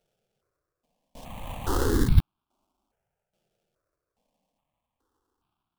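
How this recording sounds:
a buzz of ramps at a fixed pitch in blocks of 8 samples
tremolo saw down 1.2 Hz, depth 70%
aliases and images of a low sample rate 2,000 Hz, jitter 20%
notches that jump at a steady rate 2.4 Hz 280–1,900 Hz

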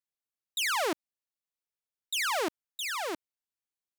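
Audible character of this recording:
background noise floor −94 dBFS
spectral slope −1.0 dB per octave

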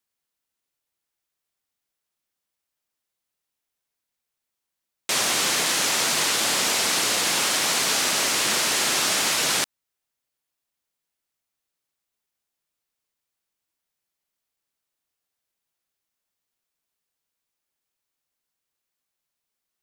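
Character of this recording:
background noise floor −84 dBFS
spectral slope −1.0 dB per octave

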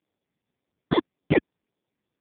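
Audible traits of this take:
aliases and images of a low sample rate 1,400 Hz, jitter 0%
phaser sweep stages 6, 1.8 Hz, lowest notch 640–1,400 Hz
AMR narrowband

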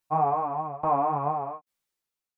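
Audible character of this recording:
tremolo saw down 1.2 Hz, depth 95%
a shimmering, thickened sound

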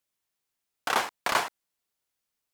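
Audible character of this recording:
background noise floor −84 dBFS
spectral slope −2.0 dB per octave

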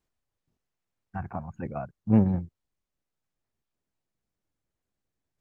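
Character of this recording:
background noise floor −86 dBFS
spectral slope −7.5 dB per octave

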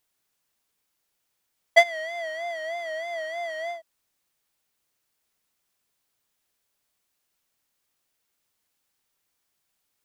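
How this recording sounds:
background noise floor −77 dBFS
spectral slope −2.5 dB per octave

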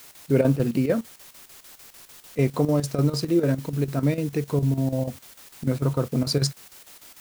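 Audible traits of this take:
a quantiser's noise floor 8 bits, dither triangular
chopped level 6.7 Hz, depth 65%, duty 75%

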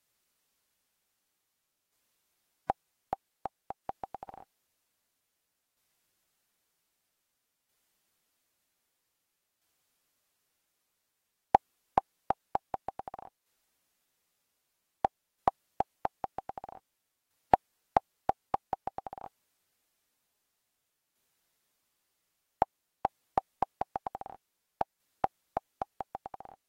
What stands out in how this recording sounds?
tremolo saw down 0.52 Hz, depth 50%
AAC

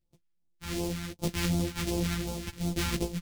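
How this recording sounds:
a buzz of ramps at a fixed pitch in blocks of 256 samples
phaser sweep stages 2, 2.7 Hz, lowest notch 520–1,700 Hz
tremolo saw down 0.81 Hz, depth 65%
a shimmering, thickened sound

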